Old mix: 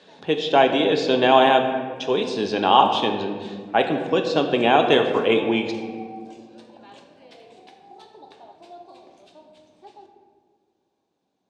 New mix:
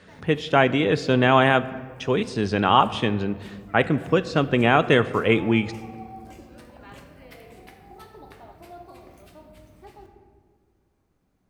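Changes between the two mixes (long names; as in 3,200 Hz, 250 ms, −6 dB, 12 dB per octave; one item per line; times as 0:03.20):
speech: send −11.5 dB
master: remove loudspeaker in its box 290–7,300 Hz, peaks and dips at 820 Hz +4 dB, 1,300 Hz −10 dB, 2,000 Hz −9 dB, 3,700 Hz +7 dB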